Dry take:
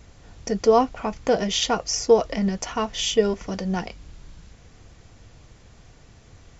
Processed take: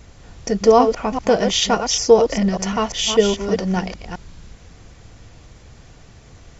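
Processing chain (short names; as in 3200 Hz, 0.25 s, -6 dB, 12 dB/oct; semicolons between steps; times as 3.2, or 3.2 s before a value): reverse delay 0.198 s, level -7 dB; gain +4.5 dB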